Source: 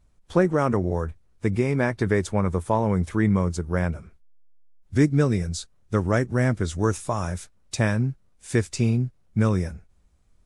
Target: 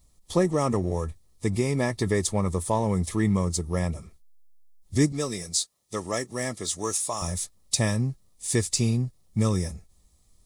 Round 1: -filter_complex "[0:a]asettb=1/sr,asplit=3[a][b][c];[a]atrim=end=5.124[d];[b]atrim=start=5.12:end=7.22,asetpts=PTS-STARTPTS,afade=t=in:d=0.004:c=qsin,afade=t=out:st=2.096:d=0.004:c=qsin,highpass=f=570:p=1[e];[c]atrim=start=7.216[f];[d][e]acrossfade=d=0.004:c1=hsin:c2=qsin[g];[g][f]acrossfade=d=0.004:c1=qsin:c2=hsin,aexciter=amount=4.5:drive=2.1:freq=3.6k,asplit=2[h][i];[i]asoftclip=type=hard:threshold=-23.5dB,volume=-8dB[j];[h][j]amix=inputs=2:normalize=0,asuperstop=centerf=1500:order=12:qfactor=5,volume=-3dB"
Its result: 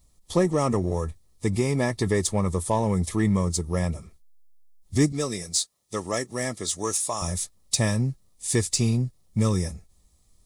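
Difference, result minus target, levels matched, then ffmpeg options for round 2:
hard clip: distortion -4 dB
-filter_complex "[0:a]asettb=1/sr,asplit=3[a][b][c];[a]atrim=end=5.124[d];[b]atrim=start=5.12:end=7.22,asetpts=PTS-STARTPTS,afade=t=in:d=0.004:c=qsin,afade=t=out:st=2.096:d=0.004:c=qsin,highpass=f=570:p=1[e];[c]atrim=start=7.216[f];[d][e]acrossfade=d=0.004:c1=hsin:c2=qsin[g];[g][f]acrossfade=d=0.004:c1=qsin:c2=hsin,aexciter=amount=4.5:drive=2.1:freq=3.6k,asplit=2[h][i];[i]asoftclip=type=hard:threshold=-34.5dB,volume=-8dB[j];[h][j]amix=inputs=2:normalize=0,asuperstop=centerf=1500:order=12:qfactor=5,volume=-3dB"

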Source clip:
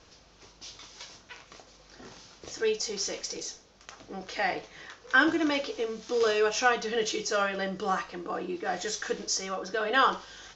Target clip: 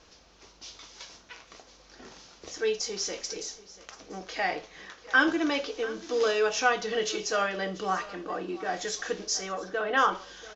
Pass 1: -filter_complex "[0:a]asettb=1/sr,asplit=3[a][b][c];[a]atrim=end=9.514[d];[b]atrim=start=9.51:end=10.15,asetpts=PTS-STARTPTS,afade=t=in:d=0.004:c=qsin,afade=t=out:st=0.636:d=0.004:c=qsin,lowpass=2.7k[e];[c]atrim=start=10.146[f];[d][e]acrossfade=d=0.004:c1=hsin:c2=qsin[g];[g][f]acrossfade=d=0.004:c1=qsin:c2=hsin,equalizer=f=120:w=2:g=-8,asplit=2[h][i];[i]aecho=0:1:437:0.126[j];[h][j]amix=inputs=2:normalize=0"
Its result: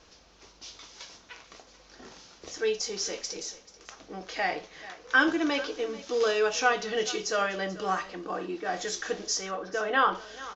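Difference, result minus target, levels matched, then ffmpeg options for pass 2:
echo 0.252 s early
-filter_complex "[0:a]asettb=1/sr,asplit=3[a][b][c];[a]atrim=end=9.514[d];[b]atrim=start=9.51:end=10.15,asetpts=PTS-STARTPTS,afade=t=in:d=0.004:c=qsin,afade=t=out:st=0.636:d=0.004:c=qsin,lowpass=2.7k[e];[c]atrim=start=10.146[f];[d][e]acrossfade=d=0.004:c1=hsin:c2=qsin[g];[g][f]acrossfade=d=0.004:c1=qsin:c2=hsin,equalizer=f=120:w=2:g=-8,asplit=2[h][i];[i]aecho=0:1:689:0.126[j];[h][j]amix=inputs=2:normalize=0"

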